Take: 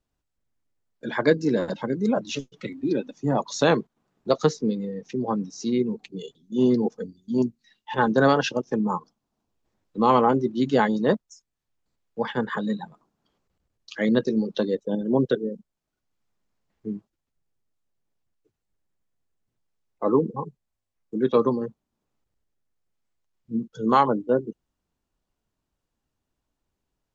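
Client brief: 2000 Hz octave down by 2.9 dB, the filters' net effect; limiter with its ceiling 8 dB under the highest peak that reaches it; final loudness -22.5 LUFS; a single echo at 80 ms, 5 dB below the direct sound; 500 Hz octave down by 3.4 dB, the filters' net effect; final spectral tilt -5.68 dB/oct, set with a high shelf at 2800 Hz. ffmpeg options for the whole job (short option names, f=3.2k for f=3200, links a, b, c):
-af "equalizer=f=500:t=o:g=-4,equalizer=f=2k:t=o:g=-5.5,highshelf=f=2.8k:g=4.5,alimiter=limit=-15.5dB:level=0:latency=1,aecho=1:1:80:0.562,volume=4.5dB"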